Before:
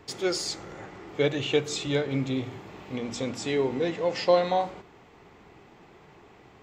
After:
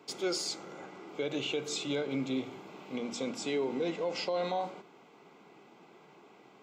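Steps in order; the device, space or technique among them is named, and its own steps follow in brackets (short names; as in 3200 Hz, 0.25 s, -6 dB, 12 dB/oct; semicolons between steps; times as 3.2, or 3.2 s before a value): PA system with an anti-feedback notch (HPF 170 Hz 24 dB/oct; Butterworth band-stop 1800 Hz, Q 6.1; limiter -20 dBFS, peak gain reduction 10.5 dB); gain -3.5 dB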